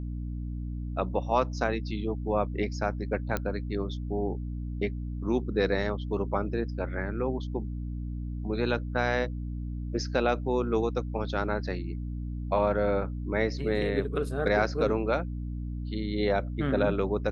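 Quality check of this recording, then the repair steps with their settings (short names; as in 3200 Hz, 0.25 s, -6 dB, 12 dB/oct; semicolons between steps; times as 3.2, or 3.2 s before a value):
hum 60 Hz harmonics 5 -34 dBFS
3.37 pop -15 dBFS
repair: de-click; de-hum 60 Hz, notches 5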